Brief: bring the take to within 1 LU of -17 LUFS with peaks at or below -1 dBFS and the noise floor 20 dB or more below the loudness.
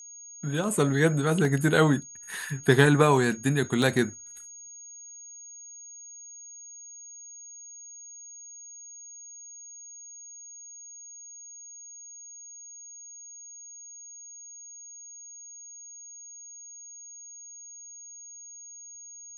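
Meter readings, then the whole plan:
dropouts 2; longest dropout 1.4 ms; steady tone 6.6 kHz; tone level -43 dBFS; loudness -24.0 LUFS; peak level -4.5 dBFS; loudness target -17.0 LUFS
-> interpolate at 1.45/3.82 s, 1.4 ms; band-stop 6.6 kHz, Q 30; trim +7 dB; peak limiter -1 dBFS

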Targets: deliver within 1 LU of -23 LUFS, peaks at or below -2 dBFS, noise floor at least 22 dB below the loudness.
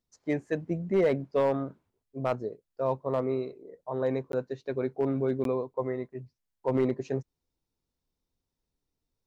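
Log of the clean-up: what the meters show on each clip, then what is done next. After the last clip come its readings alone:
clipped samples 0.3%; clipping level -18.0 dBFS; dropouts 2; longest dropout 12 ms; loudness -30.5 LUFS; peak level -18.0 dBFS; loudness target -23.0 LUFS
-> clip repair -18 dBFS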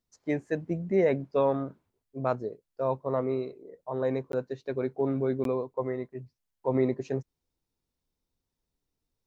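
clipped samples 0.0%; dropouts 2; longest dropout 12 ms
-> interpolate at 4.32/5.44 s, 12 ms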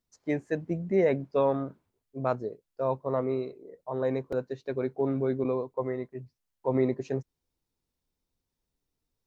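dropouts 0; loudness -30.5 LUFS; peak level -13.5 dBFS; loudness target -23.0 LUFS
-> trim +7.5 dB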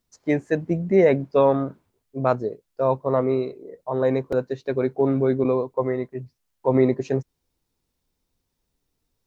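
loudness -23.0 LUFS; peak level -6.0 dBFS; noise floor -78 dBFS

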